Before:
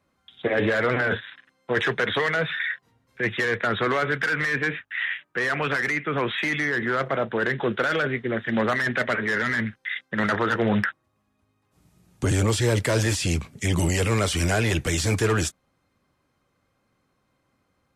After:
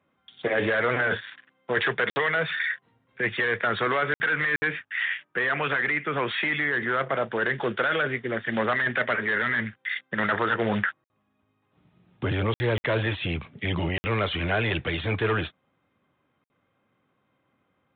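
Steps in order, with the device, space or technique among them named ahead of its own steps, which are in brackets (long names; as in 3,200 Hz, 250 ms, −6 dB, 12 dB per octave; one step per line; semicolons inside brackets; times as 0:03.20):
dynamic equaliser 240 Hz, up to −5 dB, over −34 dBFS, Q 0.8
call with lost packets (high-pass filter 110 Hz 12 dB per octave; downsampling to 8,000 Hz; dropped packets of 60 ms random)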